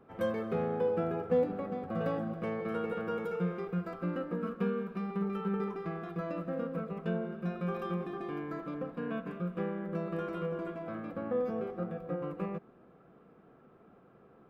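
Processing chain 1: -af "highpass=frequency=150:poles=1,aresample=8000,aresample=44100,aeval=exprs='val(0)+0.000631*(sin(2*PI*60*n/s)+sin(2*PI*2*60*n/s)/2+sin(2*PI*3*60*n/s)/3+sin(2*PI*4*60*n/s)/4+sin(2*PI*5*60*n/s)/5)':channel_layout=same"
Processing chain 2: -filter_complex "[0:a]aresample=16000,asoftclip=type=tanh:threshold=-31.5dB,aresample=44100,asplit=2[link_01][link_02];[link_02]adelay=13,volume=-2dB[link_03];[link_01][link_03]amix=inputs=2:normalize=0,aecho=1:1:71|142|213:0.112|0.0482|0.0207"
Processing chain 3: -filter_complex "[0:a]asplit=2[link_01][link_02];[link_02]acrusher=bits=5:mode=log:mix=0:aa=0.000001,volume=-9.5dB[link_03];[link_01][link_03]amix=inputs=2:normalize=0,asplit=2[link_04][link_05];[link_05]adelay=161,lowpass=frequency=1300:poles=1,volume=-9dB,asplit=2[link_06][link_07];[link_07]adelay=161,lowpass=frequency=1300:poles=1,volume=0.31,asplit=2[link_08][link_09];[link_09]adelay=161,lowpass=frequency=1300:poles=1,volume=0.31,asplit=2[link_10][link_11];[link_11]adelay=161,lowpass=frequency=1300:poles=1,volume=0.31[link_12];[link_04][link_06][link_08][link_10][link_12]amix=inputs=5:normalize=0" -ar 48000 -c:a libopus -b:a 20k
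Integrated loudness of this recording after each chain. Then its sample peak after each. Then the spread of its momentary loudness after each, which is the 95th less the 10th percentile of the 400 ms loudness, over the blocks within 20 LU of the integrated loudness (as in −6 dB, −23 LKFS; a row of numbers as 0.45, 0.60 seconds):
−36.5, −37.0, −32.5 LKFS; −18.5, −26.5, −15.0 dBFS; 8, 4, 8 LU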